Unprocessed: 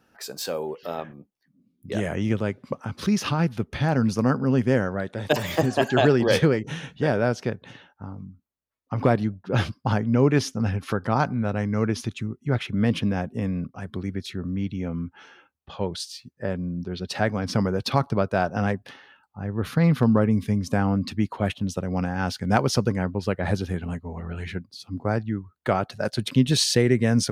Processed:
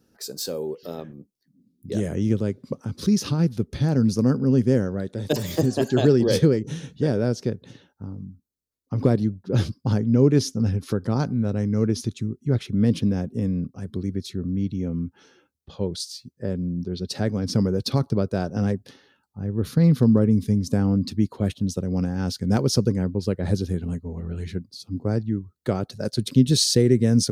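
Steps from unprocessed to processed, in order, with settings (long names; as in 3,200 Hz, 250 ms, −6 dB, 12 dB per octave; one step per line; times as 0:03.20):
flat-topped bell 1,400 Hz −12 dB 2.6 octaves
level +2.5 dB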